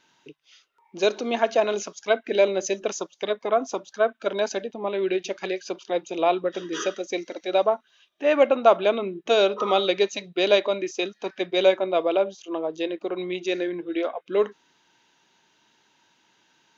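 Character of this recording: noise floor -65 dBFS; spectral tilt -3.5 dB/octave

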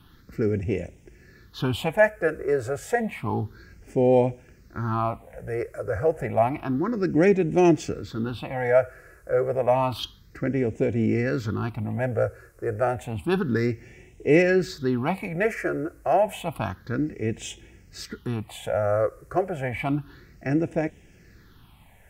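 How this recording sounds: phasing stages 6, 0.3 Hz, lowest notch 230–1200 Hz

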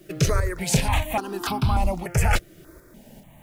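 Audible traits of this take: a quantiser's noise floor 10-bit, dither none; tremolo saw up 2.5 Hz, depth 45%; notches that jump at a steady rate 3.4 Hz 240–1900 Hz

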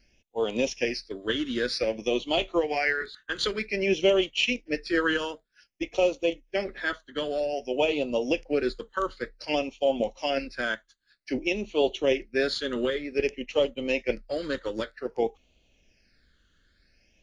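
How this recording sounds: phasing stages 8, 0.53 Hz, lowest notch 710–1600 Hz

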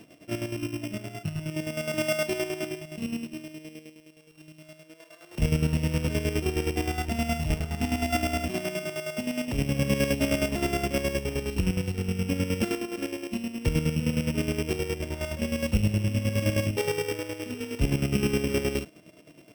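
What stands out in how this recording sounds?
a buzz of ramps at a fixed pitch in blocks of 16 samples; chopped level 9.6 Hz, depth 60%, duty 40%

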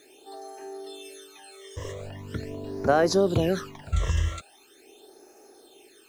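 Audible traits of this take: a quantiser's noise floor 10-bit, dither none; phasing stages 12, 0.42 Hz, lowest notch 240–3300 Hz

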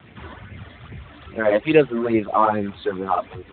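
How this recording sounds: phasing stages 12, 2.4 Hz, lowest notch 130–1200 Hz; a quantiser's noise floor 8-bit, dither none; Speex

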